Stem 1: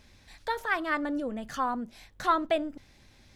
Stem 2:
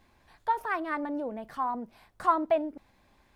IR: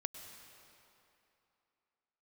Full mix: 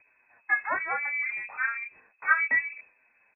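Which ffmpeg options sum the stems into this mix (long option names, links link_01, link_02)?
-filter_complex "[0:a]volume=-2dB[link_01];[1:a]adynamicequalizer=threshold=0.00708:dfrequency=2000:dqfactor=0.74:tfrequency=2000:tqfactor=0.74:attack=5:release=100:ratio=0.375:range=2.5:mode=cutabove:tftype=bell,asplit=2[link_02][link_03];[link_03]adelay=8.3,afreqshift=1.8[link_04];[link_02][link_04]amix=inputs=2:normalize=1,adelay=20,volume=1.5dB,asplit=2[link_05][link_06];[link_06]apad=whole_len=147858[link_07];[link_01][link_07]sidechaingate=range=-33dB:threshold=-54dB:ratio=16:detection=peak[link_08];[link_08][link_05]amix=inputs=2:normalize=0,lowpass=frequency=2200:width_type=q:width=0.5098,lowpass=frequency=2200:width_type=q:width=0.6013,lowpass=frequency=2200:width_type=q:width=0.9,lowpass=frequency=2200:width_type=q:width=2.563,afreqshift=-2600"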